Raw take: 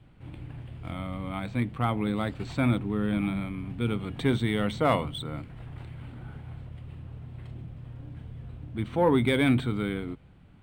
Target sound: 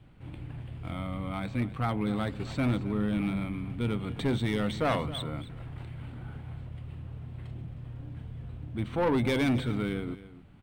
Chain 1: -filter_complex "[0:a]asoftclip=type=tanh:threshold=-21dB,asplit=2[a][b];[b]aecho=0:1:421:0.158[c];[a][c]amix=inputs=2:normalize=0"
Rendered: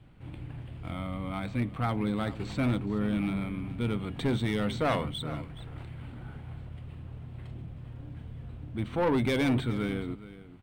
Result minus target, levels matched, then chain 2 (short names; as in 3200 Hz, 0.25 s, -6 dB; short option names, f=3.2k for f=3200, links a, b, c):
echo 0.153 s late
-filter_complex "[0:a]asoftclip=type=tanh:threshold=-21dB,asplit=2[a][b];[b]aecho=0:1:268:0.158[c];[a][c]amix=inputs=2:normalize=0"